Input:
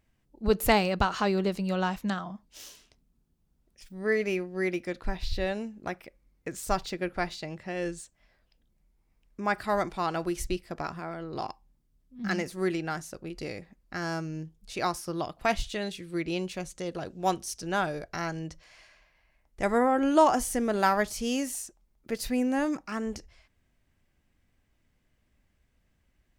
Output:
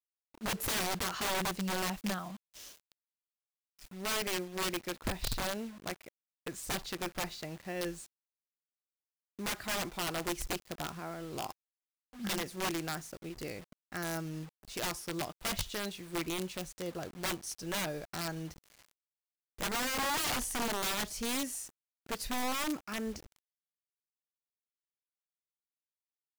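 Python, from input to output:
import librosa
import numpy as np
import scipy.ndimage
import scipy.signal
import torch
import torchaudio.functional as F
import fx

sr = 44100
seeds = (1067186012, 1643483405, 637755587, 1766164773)

y = (np.mod(10.0 ** (23.5 / 20.0) * x + 1.0, 2.0) - 1.0) / 10.0 ** (23.5 / 20.0)
y = fx.quant_dither(y, sr, seeds[0], bits=8, dither='none')
y = y * 10.0 ** (-4.5 / 20.0)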